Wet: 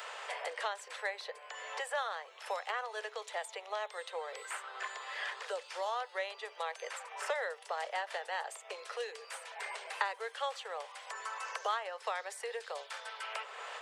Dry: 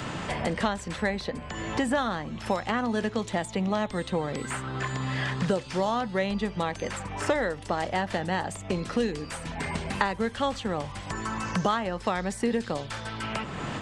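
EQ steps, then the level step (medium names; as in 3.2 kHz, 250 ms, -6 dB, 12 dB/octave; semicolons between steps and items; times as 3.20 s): steep high-pass 430 Hz 72 dB/octave; tilt EQ +3.5 dB/octave; peaking EQ 7.9 kHz -11.5 dB 2.4 oct; -6.5 dB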